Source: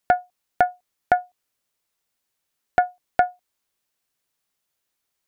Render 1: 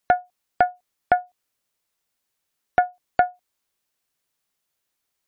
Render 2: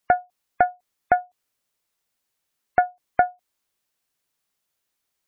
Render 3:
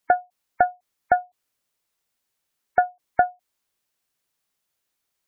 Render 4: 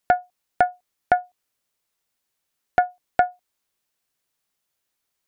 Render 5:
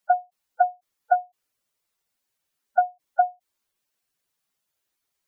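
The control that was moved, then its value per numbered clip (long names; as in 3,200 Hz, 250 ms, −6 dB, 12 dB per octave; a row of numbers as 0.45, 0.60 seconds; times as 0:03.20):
gate on every frequency bin, under each frame's peak: −50, −35, −25, −60, −10 decibels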